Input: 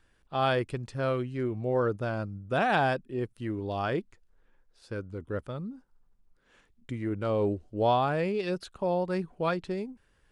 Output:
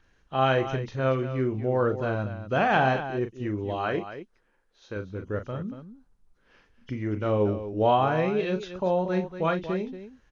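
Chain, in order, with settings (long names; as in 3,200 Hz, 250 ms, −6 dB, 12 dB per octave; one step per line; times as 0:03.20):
hearing-aid frequency compression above 2,700 Hz 1.5 to 1
0:03.74–0:04.97: low-shelf EQ 130 Hz −11 dB
on a send: loudspeakers that aren't time-aligned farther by 13 metres −9 dB, 80 metres −11 dB
on the sum: level +2.5 dB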